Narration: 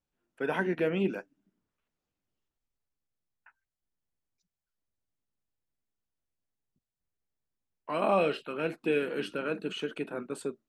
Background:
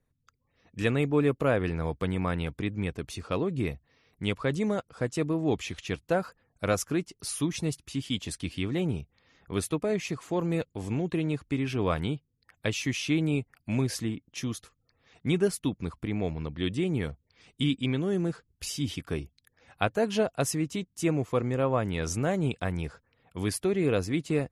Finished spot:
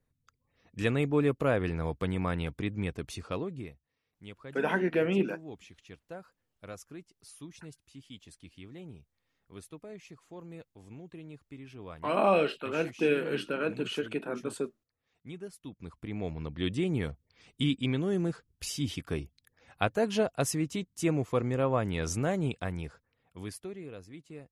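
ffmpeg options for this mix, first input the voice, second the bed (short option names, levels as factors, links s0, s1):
-filter_complex "[0:a]adelay=4150,volume=1.19[s0];[1:a]volume=5.01,afade=t=out:st=3.14:d=0.6:silence=0.16788,afade=t=in:st=15.61:d=1.05:silence=0.158489,afade=t=out:st=22.16:d=1.73:silence=0.133352[s1];[s0][s1]amix=inputs=2:normalize=0"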